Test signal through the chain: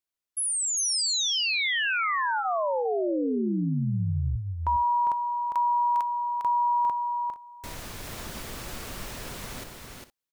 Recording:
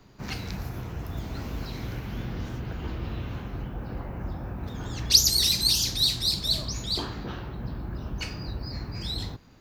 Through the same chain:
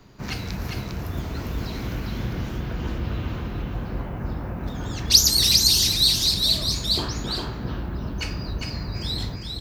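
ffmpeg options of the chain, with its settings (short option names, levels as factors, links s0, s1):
-filter_complex "[0:a]bandreject=f=800:w=22,asplit=2[s0][s1];[s1]asoftclip=type=tanh:threshold=0.251,volume=0.376[s2];[s0][s2]amix=inputs=2:normalize=0,aecho=1:1:403|463:0.596|0.133,volume=1.12"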